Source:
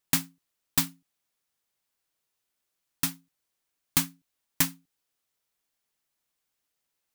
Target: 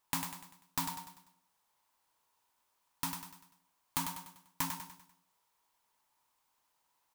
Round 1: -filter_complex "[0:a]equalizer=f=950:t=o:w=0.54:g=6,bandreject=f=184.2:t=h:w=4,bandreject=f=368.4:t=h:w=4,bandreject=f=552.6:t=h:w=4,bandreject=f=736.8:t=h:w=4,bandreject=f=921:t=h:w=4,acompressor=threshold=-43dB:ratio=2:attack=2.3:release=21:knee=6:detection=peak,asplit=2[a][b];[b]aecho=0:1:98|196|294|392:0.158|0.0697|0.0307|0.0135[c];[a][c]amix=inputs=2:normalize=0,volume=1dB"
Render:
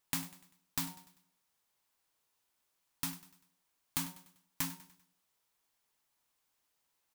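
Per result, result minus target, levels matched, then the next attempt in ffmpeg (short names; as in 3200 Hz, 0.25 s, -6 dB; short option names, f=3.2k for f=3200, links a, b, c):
1000 Hz band -8.5 dB; echo-to-direct -9.5 dB
-filter_complex "[0:a]equalizer=f=950:t=o:w=0.54:g=17.5,bandreject=f=184.2:t=h:w=4,bandreject=f=368.4:t=h:w=4,bandreject=f=552.6:t=h:w=4,bandreject=f=736.8:t=h:w=4,bandreject=f=921:t=h:w=4,acompressor=threshold=-43dB:ratio=2:attack=2.3:release=21:knee=6:detection=peak,asplit=2[a][b];[b]aecho=0:1:98|196|294|392:0.158|0.0697|0.0307|0.0135[c];[a][c]amix=inputs=2:normalize=0,volume=1dB"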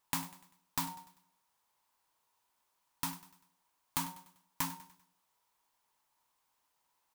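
echo-to-direct -9.5 dB
-filter_complex "[0:a]equalizer=f=950:t=o:w=0.54:g=17.5,bandreject=f=184.2:t=h:w=4,bandreject=f=368.4:t=h:w=4,bandreject=f=552.6:t=h:w=4,bandreject=f=736.8:t=h:w=4,bandreject=f=921:t=h:w=4,acompressor=threshold=-43dB:ratio=2:attack=2.3:release=21:knee=6:detection=peak,asplit=2[a][b];[b]aecho=0:1:98|196|294|392|490:0.473|0.208|0.0916|0.0403|0.0177[c];[a][c]amix=inputs=2:normalize=0,volume=1dB"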